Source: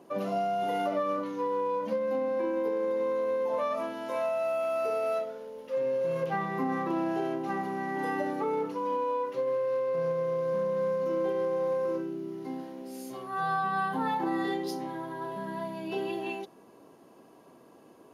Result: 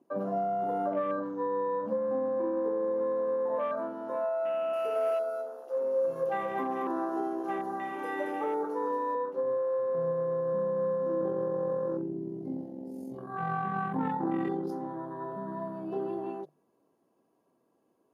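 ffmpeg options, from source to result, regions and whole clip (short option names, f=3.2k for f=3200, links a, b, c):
-filter_complex "[0:a]asettb=1/sr,asplit=3[a][b][c];[a]atrim=end=4.734[d];[b]atrim=start=4.73:end=9.15,asetpts=PTS-STARTPTS,afade=t=in:d=0.004:c=qsin,afade=t=out:st=4.416:d=0.004:c=qsin,bass=f=250:g=-12,treble=f=4k:g=13,aecho=1:1:228|456|684:0.562|0.118|0.0248,atrim=end_sample=194922[e];[c]atrim=start=9.146[f];[d][e]acrossfade=d=0.004:c1=hsin:c2=qsin[g];[g][f]acrossfade=d=0.004:c1=qsin:c2=hsin,asettb=1/sr,asplit=3[h][i][j];[h]atrim=end=11.214[k];[i]atrim=start=11.21:end=14.71,asetpts=PTS-STARTPTS,afade=t=in:d=0.004:c=qsin,afade=t=out:st=3.496:d=0.004:c=qsin,bass=f=250:g=9,treble=f=4k:g=3,tremolo=f=45:d=0.462[l];[j]atrim=start=14.706[m];[k][l]acrossfade=d=0.004:c1=hsin:c2=qsin[n];[n][m]acrossfade=d=0.004:c1=qsin:c2=hsin,afwtdn=0.0141,equalizer=f=3.1k:w=0.54:g=-5,bandreject=f=50:t=h:w=6,bandreject=f=100:t=h:w=6,bandreject=f=150:t=h:w=6"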